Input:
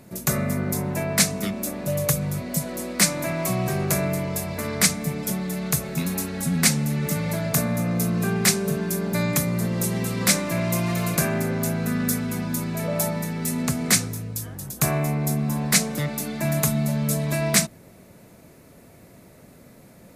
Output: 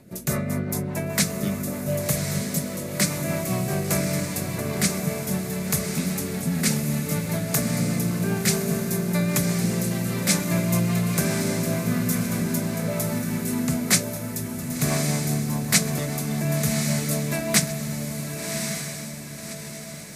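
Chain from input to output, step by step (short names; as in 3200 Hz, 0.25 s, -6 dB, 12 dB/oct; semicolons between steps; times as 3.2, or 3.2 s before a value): rotary speaker horn 5 Hz; diffused feedback echo 1.12 s, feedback 47%, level -5 dB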